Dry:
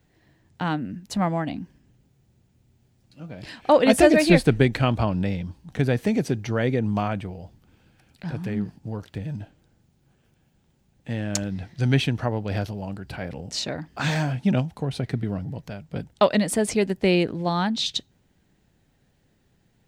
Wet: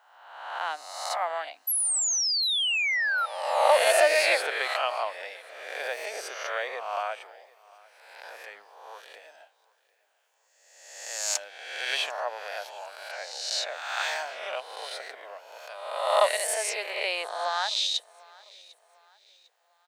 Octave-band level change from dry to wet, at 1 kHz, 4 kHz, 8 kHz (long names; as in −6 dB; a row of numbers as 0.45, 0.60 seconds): +0.5, +3.5, +7.0 decibels